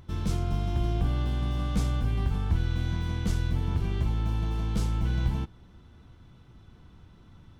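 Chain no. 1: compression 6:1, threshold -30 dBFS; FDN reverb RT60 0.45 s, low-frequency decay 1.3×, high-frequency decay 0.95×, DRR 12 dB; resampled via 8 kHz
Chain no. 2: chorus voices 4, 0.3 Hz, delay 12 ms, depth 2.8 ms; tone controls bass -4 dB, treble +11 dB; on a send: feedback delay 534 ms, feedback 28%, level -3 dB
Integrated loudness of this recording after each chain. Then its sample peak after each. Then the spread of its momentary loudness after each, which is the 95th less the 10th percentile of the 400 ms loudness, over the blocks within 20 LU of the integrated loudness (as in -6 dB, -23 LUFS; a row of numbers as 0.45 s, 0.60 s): -35.0 LUFS, -33.0 LUFS; -22.0 dBFS, -17.5 dBFS; 20 LU, 8 LU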